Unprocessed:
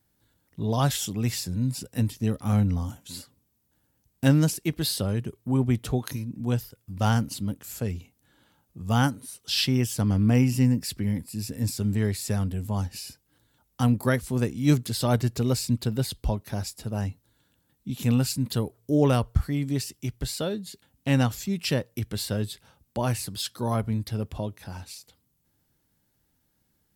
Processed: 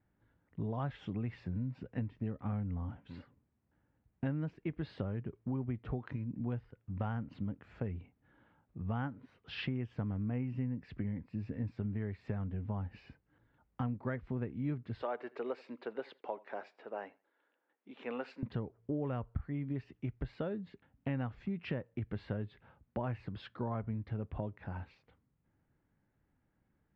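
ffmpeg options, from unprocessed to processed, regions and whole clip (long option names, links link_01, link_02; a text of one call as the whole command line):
ffmpeg -i in.wav -filter_complex "[0:a]asettb=1/sr,asplit=3[link_01][link_02][link_03];[link_01]atrim=end=15.024[link_04];[link_02]atrim=start=15.02:end=18.43,asetpts=PTS-STARTPTS,afade=type=in:duration=0.004:curve=qsin,afade=type=out:start_time=3.406:duration=0.004:curve=qsin,highpass=frequency=390:width=0.5412,highpass=frequency=390:width=1.3066,aecho=1:1:82|164:0.0631|0.0139,atrim=end_sample=150381[link_05];[link_03]atrim=start=18.426[link_06];[link_04][link_05]acrossfade=duration=0.004:curve1=hsin:curve2=qsin[link_07];[link_07][link_06]acrossfade=duration=0.004:curve1=qsin:curve2=hsin,lowpass=frequency=2200:width=0.5412,lowpass=frequency=2200:width=1.3066,acompressor=threshold=-31dB:ratio=6,volume=-3dB" out.wav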